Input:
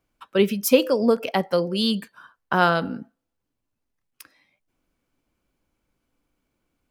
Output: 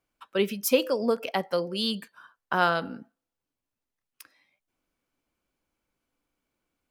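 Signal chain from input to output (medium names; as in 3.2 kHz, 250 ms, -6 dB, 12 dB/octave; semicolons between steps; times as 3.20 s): bass shelf 310 Hz -7 dB; trim -3.5 dB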